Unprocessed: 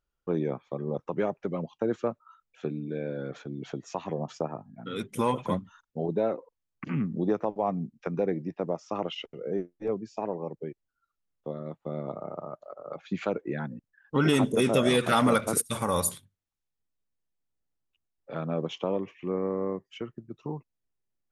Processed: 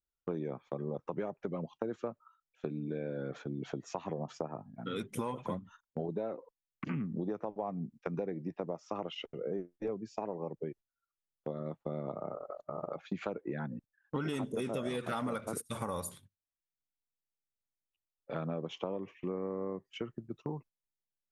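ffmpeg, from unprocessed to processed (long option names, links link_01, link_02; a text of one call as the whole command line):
ffmpeg -i in.wav -filter_complex "[0:a]asplit=3[link_01][link_02][link_03];[link_01]atrim=end=12.342[link_04];[link_02]atrim=start=12.338:end=12.892,asetpts=PTS-STARTPTS,areverse[link_05];[link_03]atrim=start=12.888[link_06];[link_04][link_05]acrossfade=duration=0.004:curve1=hsin:curve2=hsin[link_07];[link_07][link_06]acrossfade=duration=0.004:curve1=hsin:curve2=hsin,agate=range=-13dB:threshold=-48dB:ratio=16:detection=peak,acompressor=threshold=-33dB:ratio=6,adynamicequalizer=threshold=0.002:dfrequency=2000:dqfactor=0.7:tfrequency=2000:tqfactor=0.7:attack=5:release=100:ratio=0.375:range=2.5:mode=cutabove:tftype=highshelf" out.wav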